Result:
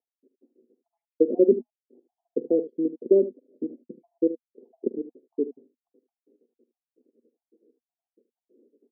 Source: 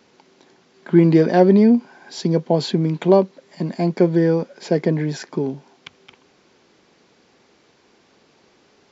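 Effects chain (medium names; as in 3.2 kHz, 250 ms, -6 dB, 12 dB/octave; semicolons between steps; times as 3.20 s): random holes in the spectrogram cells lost 70%; elliptic band-pass 240–490 Hz, stop band 60 dB; early reflections 46 ms -17 dB, 76 ms -14 dB; tape noise reduction on one side only decoder only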